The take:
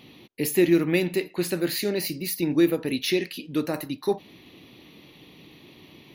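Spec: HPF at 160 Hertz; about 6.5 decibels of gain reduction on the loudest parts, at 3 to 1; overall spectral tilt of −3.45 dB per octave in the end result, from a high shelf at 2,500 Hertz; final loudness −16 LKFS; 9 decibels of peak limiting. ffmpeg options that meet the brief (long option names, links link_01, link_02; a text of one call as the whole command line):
ffmpeg -i in.wav -af "highpass=160,highshelf=frequency=2500:gain=4.5,acompressor=threshold=-23dB:ratio=3,volume=16dB,alimiter=limit=-6.5dB:level=0:latency=1" out.wav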